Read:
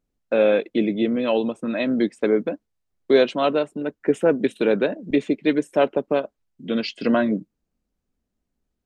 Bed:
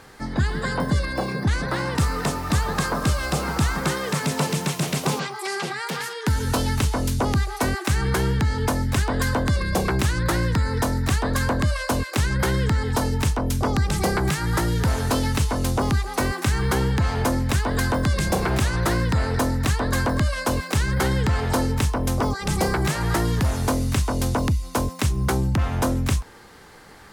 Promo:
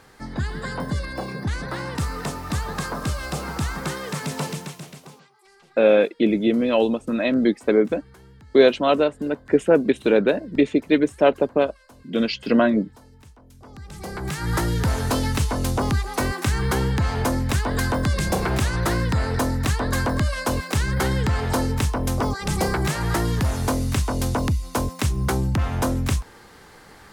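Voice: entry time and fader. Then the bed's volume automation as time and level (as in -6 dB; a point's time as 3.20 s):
5.45 s, +2.0 dB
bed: 4.48 s -4.5 dB
5.30 s -27 dB
13.50 s -27 dB
14.50 s -0.5 dB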